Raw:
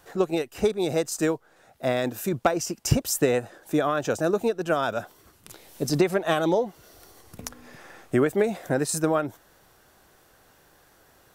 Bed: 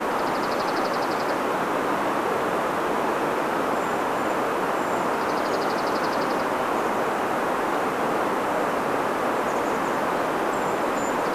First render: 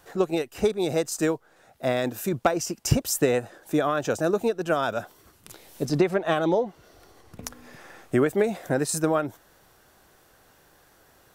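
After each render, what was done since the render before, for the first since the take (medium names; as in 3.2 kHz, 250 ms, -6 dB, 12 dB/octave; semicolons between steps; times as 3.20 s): 5.85–7.43 s: treble shelf 6.1 kHz -12 dB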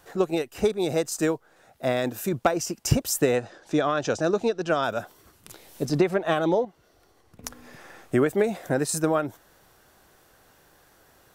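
3.36–4.84 s: resonant low-pass 5.4 kHz, resonance Q 1.6; 6.65–7.44 s: gain -7.5 dB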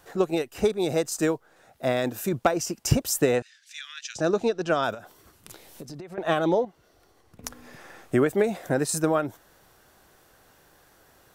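3.42–4.16 s: steep high-pass 1.9 kHz; 4.94–6.18 s: compression 12:1, threshold -36 dBFS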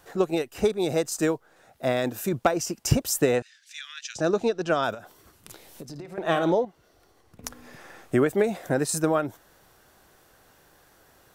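5.90–6.52 s: flutter echo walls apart 9.5 m, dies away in 0.31 s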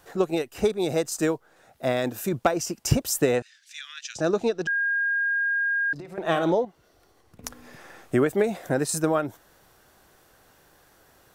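4.67–5.93 s: bleep 1.62 kHz -21.5 dBFS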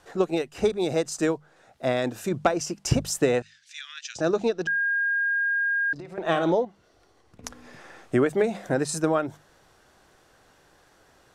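low-pass 8 kHz 12 dB/octave; hum notches 50/100/150/200 Hz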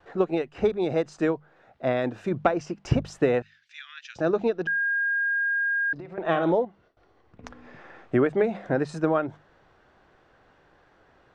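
low-pass 2.6 kHz 12 dB/octave; gate with hold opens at -53 dBFS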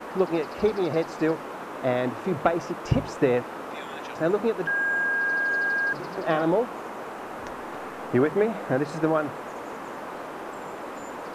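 add bed -12 dB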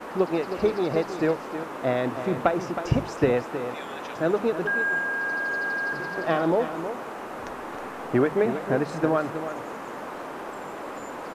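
delay 317 ms -10 dB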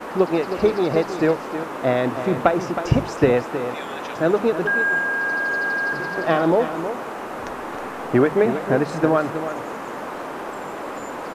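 trim +5 dB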